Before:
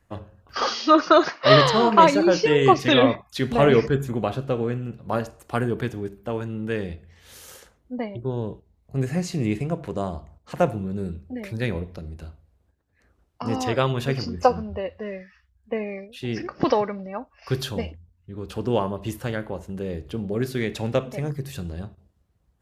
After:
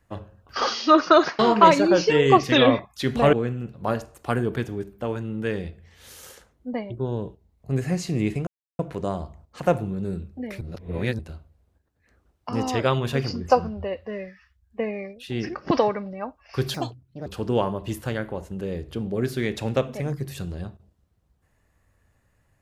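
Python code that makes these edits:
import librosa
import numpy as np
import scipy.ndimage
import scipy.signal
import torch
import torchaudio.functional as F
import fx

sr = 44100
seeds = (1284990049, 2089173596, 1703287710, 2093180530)

y = fx.edit(x, sr, fx.cut(start_s=1.39, length_s=0.36),
    fx.cut(start_s=3.69, length_s=0.89),
    fx.insert_silence(at_s=9.72, length_s=0.32),
    fx.reverse_span(start_s=11.54, length_s=0.58),
    fx.speed_span(start_s=17.67, length_s=0.77, speed=1.48), tone=tone)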